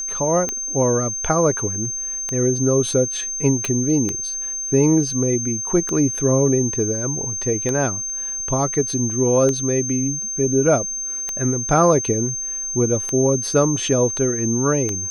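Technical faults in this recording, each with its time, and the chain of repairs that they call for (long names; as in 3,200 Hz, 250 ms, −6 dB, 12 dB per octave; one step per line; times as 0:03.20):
scratch tick 33 1/3 rpm −10 dBFS
whistle 6,300 Hz −24 dBFS
0:03.65: click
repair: click removal
notch filter 6,300 Hz, Q 30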